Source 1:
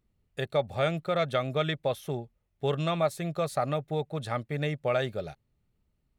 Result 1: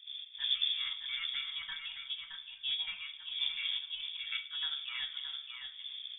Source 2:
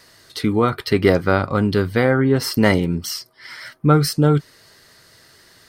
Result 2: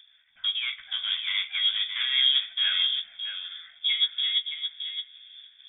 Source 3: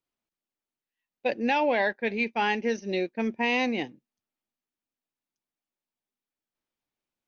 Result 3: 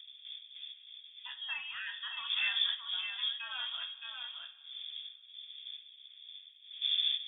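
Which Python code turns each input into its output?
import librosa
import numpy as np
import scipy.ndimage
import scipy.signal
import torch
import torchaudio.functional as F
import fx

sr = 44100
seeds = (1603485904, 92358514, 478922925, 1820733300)

y = fx.dmg_wind(x, sr, seeds[0], corner_hz=260.0, level_db=-35.0)
y = fx.level_steps(y, sr, step_db=10)
y = np.clip(y, -10.0 ** (-15.0 / 20.0), 10.0 ** (-15.0 / 20.0))
y = fx.chorus_voices(y, sr, voices=6, hz=0.43, base_ms=13, depth_ms=2.0, mix_pct=25)
y = fx.fixed_phaser(y, sr, hz=1300.0, stages=4)
y = y + 10.0 ** (-5.5 / 20.0) * np.pad(y, (int(619 * sr / 1000.0), 0))[:len(y)]
y = fx.rev_double_slope(y, sr, seeds[1], early_s=0.34, late_s=2.5, knee_db=-19, drr_db=4.0)
y = fx.freq_invert(y, sr, carrier_hz=3500)
y = fx.upward_expand(y, sr, threshold_db=-36.0, expansion=1.5)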